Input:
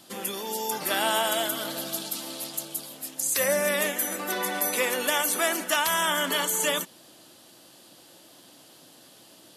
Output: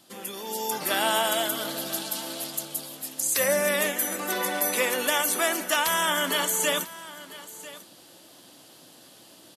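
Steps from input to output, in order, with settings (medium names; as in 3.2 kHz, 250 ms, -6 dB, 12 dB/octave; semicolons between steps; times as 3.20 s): delay 995 ms -17.5 dB; level rider gain up to 6 dB; trim -5 dB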